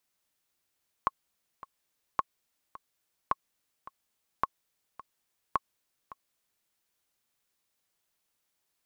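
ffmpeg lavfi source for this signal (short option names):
-f lavfi -i "aevalsrc='pow(10,(-12-18.5*gte(mod(t,2*60/107),60/107))/20)*sin(2*PI*1090*mod(t,60/107))*exp(-6.91*mod(t,60/107)/0.03)':d=5.6:s=44100"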